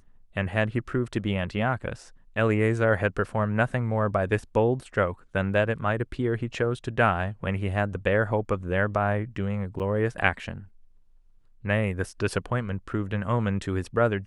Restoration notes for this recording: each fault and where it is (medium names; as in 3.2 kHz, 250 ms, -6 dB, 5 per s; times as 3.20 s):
9.79–9.80 s: dropout 8 ms